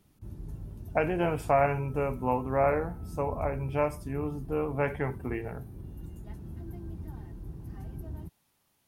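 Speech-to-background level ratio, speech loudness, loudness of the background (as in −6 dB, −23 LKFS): 13.0 dB, −30.0 LKFS, −43.0 LKFS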